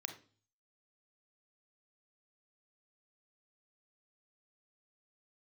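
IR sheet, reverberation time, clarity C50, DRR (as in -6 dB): 0.40 s, 10.5 dB, 6.0 dB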